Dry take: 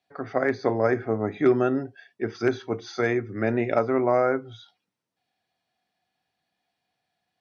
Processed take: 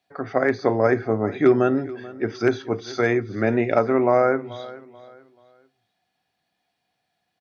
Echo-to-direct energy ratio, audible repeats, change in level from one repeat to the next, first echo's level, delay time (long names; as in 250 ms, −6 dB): −18.0 dB, 2, −9.5 dB, −18.5 dB, 434 ms